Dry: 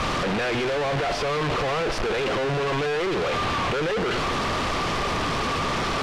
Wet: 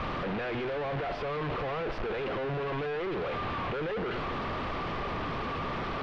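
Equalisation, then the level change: air absorption 330 m; high shelf 10000 Hz +11 dB; -7.0 dB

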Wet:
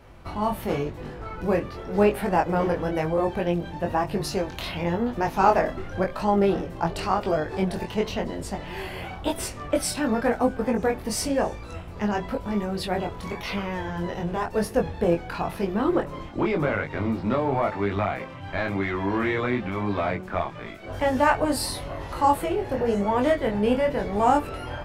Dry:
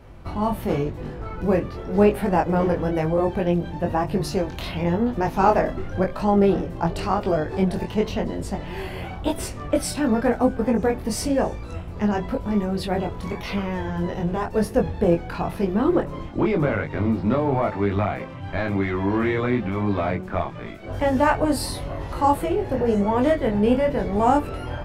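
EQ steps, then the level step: low shelf 500 Hz -6.5 dB; +1.0 dB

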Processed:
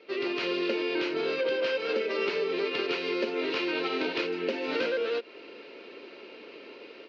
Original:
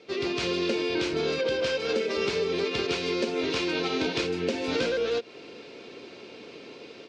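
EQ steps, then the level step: speaker cabinet 430–3700 Hz, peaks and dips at 470 Hz -4 dB, 740 Hz -9 dB, 1100 Hz -5 dB, 1600 Hz -4 dB, 2300 Hz -4 dB, 3500 Hz -9 dB; +4.5 dB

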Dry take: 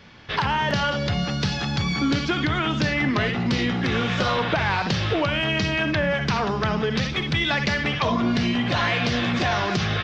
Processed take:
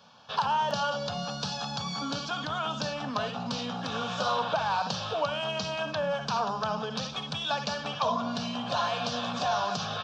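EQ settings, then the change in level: HPF 250 Hz 12 dB/oct; fixed phaser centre 840 Hz, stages 4; -1.5 dB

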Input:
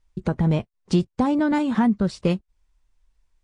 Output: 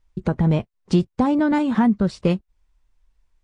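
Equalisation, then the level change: high shelf 4400 Hz -5 dB; +2.0 dB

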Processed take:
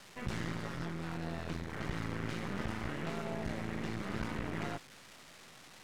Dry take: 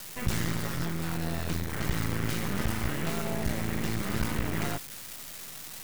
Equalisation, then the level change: air absorption 56 m; low shelf 120 Hz -8.5 dB; high shelf 3800 Hz -7 dB; -4.5 dB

